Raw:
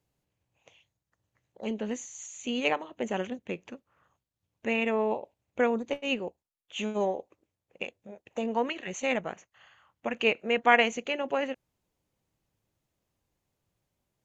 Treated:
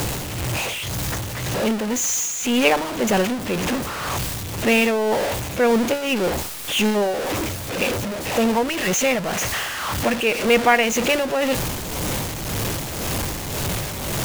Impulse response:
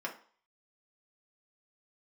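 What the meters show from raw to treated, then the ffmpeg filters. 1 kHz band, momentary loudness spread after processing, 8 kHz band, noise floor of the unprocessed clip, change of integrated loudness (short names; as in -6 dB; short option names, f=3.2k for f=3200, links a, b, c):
+8.5 dB, 8 LU, n/a, under -85 dBFS, +9.0 dB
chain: -af "aeval=exprs='val(0)+0.5*0.0562*sgn(val(0))':c=same,tremolo=f=1.9:d=0.49,volume=8dB"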